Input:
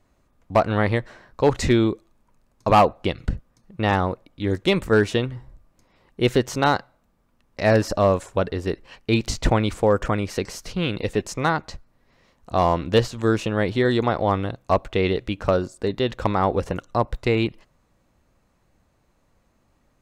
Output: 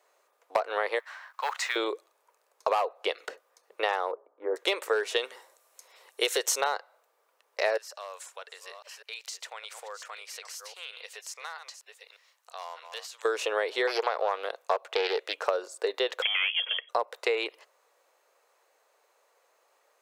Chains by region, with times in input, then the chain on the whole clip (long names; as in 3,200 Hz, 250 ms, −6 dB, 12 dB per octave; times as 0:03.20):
0:00.99–0:01.76: mu-law and A-law mismatch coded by mu + high-pass filter 990 Hz 24 dB per octave + high-shelf EQ 3,300 Hz −10 dB
0:04.11–0:04.56: inverse Chebyshev low-pass filter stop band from 6,800 Hz, stop band 80 dB + mains-hum notches 60/120/180/240/300/360/420 Hz
0:05.16–0:06.61: parametric band 9,700 Hz +13.5 dB 2.5 octaves + notch filter 4,800 Hz, Q 17
0:07.77–0:13.25: delay that plays each chunk backwards 628 ms, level −13 dB + guitar amp tone stack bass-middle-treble 10-0-10 + downward compressor 2 to 1, threshold −46 dBFS
0:13.87–0:15.42: bass and treble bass −12 dB, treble 0 dB + highs frequency-modulated by the lows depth 0.24 ms
0:16.22–0:16.89: parametric band 330 Hz −11.5 dB 1.2 octaves + tube saturation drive 19 dB, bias 0.25 + voice inversion scrambler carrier 3,300 Hz
whole clip: elliptic high-pass filter 440 Hz, stop band 60 dB; high-shelf EQ 8,700 Hz +5 dB; downward compressor 8 to 1, threshold −26 dBFS; level +2.5 dB